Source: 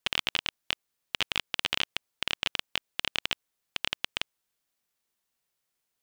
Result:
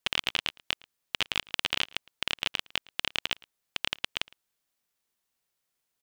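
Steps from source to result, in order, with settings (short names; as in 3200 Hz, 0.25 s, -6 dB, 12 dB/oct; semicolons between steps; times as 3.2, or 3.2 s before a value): outdoor echo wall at 19 m, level -24 dB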